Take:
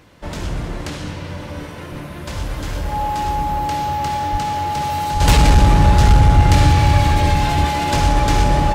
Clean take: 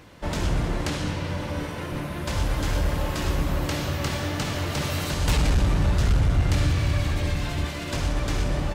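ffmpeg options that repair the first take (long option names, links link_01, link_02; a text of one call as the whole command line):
ffmpeg -i in.wav -filter_complex "[0:a]bandreject=frequency=840:width=30,asplit=3[link_01][link_02][link_03];[link_01]afade=type=out:start_time=4.31:duration=0.02[link_04];[link_02]highpass=frequency=140:width=0.5412,highpass=frequency=140:width=1.3066,afade=type=in:start_time=4.31:duration=0.02,afade=type=out:start_time=4.43:duration=0.02[link_05];[link_03]afade=type=in:start_time=4.43:duration=0.02[link_06];[link_04][link_05][link_06]amix=inputs=3:normalize=0,asplit=3[link_07][link_08][link_09];[link_07]afade=type=out:start_time=5.13:duration=0.02[link_10];[link_08]highpass=frequency=140:width=0.5412,highpass=frequency=140:width=1.3066,afade=type=in:start_time=5.13:duration=0.02,afade=type=out:start_time=5.25:duration=0.02[link_11];[link_09]afade=type=in:start_time=5.25:duration=0.02[link_12];[link_10][link_11][link_12]amix=inputs=3:normalize=0,asplit=3[link_13][link_14][link_15];[link_13]afade=type=out:start_time=6.94:duration=0.02[link_16];[link_14]highpass=frequency=140:width=0.5412,highpass=frequency=140:width=1.3066,afade=type=in:start_time=6.94:duration=0.02,afade=type=out:start_time=7.06:duration=0.02[link_17];[link_15]afade=type=in:start_time=7.06:duration=0.02[link_18];[link_16][link_17][link_18]amix=inputs=3:normalize=0,asetnsamples=nb_out_samples=441:pad=0,asendcmd='5.2 volume volume -9.5dB',volume=0dB" out.wav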